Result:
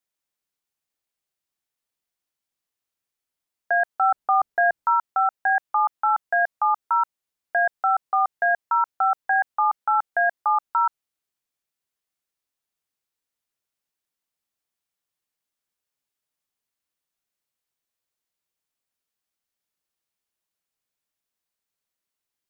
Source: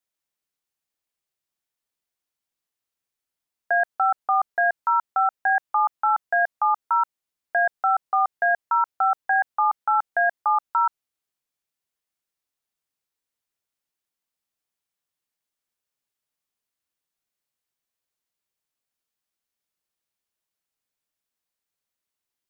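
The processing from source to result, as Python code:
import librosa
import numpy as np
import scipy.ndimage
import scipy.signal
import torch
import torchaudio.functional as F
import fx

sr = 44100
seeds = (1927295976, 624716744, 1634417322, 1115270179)

y = fx.low_shelf(x, sr, hz=420.0, db=8.0, at=(4.01, 4.94), fade=0.02)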